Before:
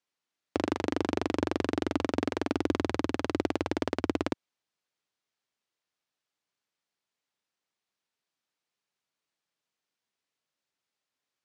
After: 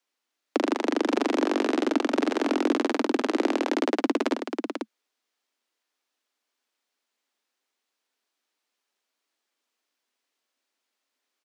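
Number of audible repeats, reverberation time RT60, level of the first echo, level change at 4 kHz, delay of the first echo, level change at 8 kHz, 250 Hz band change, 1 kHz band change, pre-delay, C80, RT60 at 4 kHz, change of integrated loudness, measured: 2, no reverb audible, −17.5 dB, +6.0 dB, 70 ms, +6.0 dB, +6.0 dB, +6.0 dB, no reverb audible, no reverb audible, no reverb audible, +5.5 dB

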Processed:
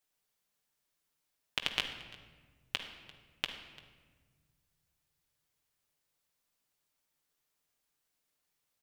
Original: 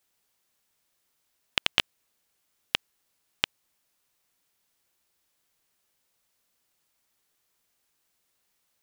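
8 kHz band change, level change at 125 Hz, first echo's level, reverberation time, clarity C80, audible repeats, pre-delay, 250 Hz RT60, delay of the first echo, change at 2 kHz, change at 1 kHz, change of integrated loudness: −7.5 dB, −5.5 dB, −21.5 dB, 1.5 s, 9.0 dB, 1, 7 ms, 2.4 s, 344 ms, −7.5 dB, −7.0 dB, −8.5 dB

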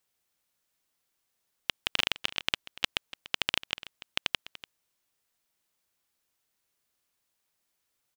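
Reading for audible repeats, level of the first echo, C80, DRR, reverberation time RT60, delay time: 1, −17.0 dB, no reverb audible, no reverb audible, no reverb audible, 291 ms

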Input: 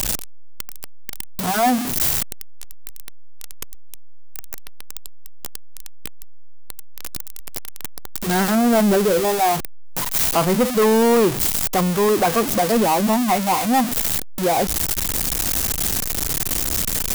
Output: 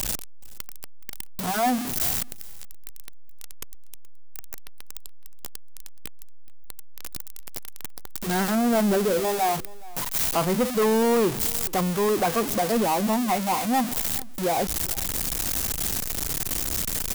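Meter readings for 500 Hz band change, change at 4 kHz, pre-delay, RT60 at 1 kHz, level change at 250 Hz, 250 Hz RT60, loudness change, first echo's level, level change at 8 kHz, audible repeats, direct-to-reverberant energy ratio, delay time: −5.5 dB, −5.5 dB, no reverb audible, no reverb audible, −5.5 dB, no reverb audible, −5.5 dB, −21.5 dB, −5.5 dB, 1, no reverb audible, 424 ms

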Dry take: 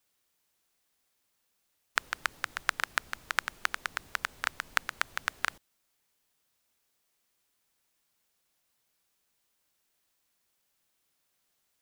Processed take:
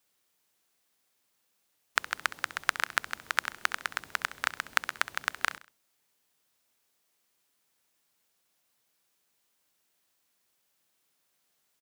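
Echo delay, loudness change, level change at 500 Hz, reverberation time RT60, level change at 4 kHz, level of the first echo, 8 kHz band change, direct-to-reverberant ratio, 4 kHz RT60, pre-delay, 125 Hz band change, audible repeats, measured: 66 ms, +1.5 dB, +2.0 dB, no reverb audible, +1.5 dB, −15.5 dB, +1.5 dB, no reverb audible, no reverb audible, no reverb audible, −1.0 dB, 3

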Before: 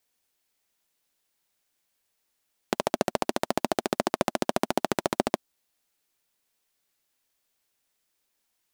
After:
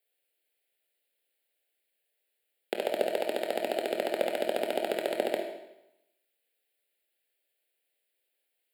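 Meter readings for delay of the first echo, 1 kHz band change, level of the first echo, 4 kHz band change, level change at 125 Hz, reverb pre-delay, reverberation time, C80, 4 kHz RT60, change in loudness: no echo audible, −6.5 dB, no echo audible, −3.0 dB, below −15 dB, 21 ms, 0.90 s, 7.0 dB, 0.85 s, −2.5 dB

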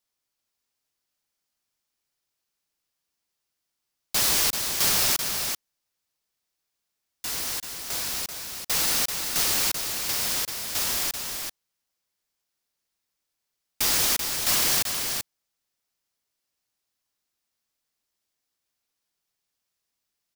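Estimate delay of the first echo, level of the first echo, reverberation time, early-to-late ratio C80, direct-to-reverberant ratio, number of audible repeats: 386 ms, −6.0 dB, no reverb audible, no reverb audible, no reverb audible, 1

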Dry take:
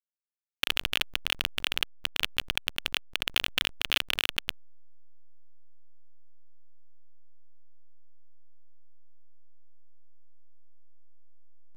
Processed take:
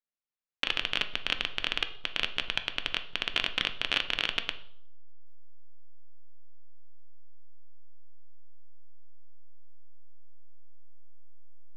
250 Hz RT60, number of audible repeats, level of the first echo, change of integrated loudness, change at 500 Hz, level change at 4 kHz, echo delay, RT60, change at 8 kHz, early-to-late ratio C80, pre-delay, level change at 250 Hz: 0.70 s, no echo audible, no echo audible, −1.5 dB, +0.5 dB, −1.5 dB, no echo audible, 0.65 s, −9.5 dB, 16.5 dB, 4 ms, +1.0 dB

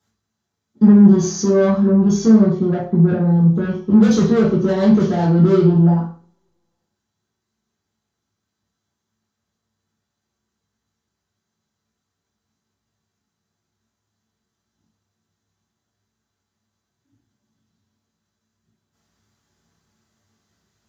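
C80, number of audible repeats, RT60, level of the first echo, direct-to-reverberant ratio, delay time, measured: 10.5 dB, no echo audible, 0.45 s, no echo audible, −6.0 dB, no echo audible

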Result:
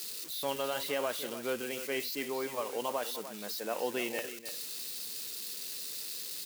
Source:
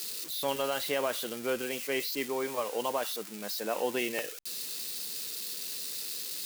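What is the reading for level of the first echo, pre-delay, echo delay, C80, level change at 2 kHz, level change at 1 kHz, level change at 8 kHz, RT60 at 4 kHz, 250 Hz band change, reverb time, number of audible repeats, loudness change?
−12.0 dB, no reverb audible, 298 ms, no reverb audible, −2.5 dB, −2.5 dB, −3.0 dB, no reverb audible, −3.0 dB, no reverb audible, 1, −2.5 dB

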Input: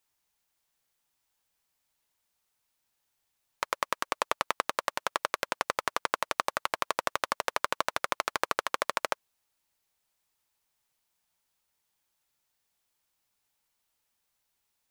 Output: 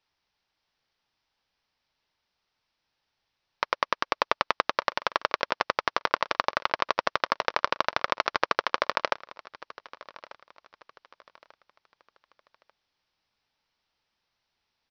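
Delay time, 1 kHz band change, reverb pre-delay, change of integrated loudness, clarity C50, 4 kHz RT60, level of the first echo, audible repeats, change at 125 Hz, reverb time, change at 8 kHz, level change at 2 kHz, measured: 1,191 ms, +4.0 dB, no reverb audible, +4.0 dB, no reverb audible, no reverb audible, −19.5 dB, 2, +4.0 dB, no reverb audible, −8.5 dB, +4.0 dB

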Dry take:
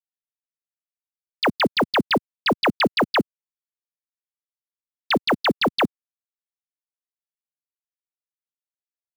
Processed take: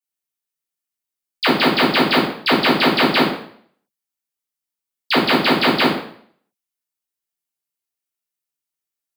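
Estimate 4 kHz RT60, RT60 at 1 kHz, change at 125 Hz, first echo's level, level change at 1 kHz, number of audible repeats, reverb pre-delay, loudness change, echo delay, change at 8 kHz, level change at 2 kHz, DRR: 0.55 s, 0.60 s, +5.5 dB, no echo audible, +4.5 dB, no echo audible, 4 ms, +5.5 dB, no echo audible, can't be measured, +5.5 dB, −7.0 dB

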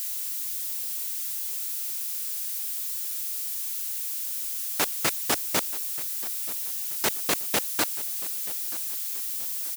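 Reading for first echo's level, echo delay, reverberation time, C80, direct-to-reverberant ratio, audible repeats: −17.5 dB, 931 ms, no reverb audible, no reverb audible, no reverb audible, 3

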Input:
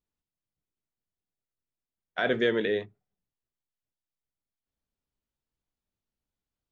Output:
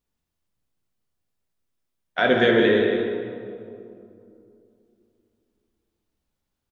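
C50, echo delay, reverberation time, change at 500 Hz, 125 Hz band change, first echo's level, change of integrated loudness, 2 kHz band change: 2.0 dB, 187 ms, 2.6 s, +9.0 dB, +10.0 dB, −8.0 dB, +7.5 dB, +8.5 dB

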